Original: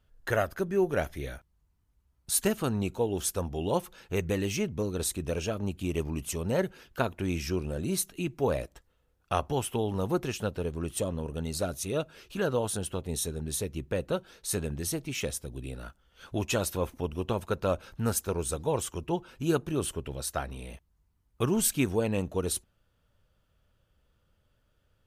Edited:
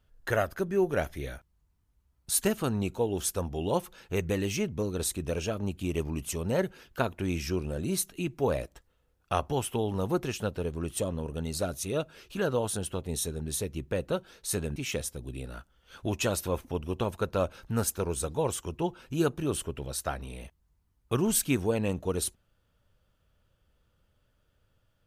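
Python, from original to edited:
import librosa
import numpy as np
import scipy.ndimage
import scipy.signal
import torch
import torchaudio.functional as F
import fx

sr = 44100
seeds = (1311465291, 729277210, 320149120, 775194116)

y = fx.edit(x, sr, fx.cut(start_s=14.76, length_s=0.29), tone=tone)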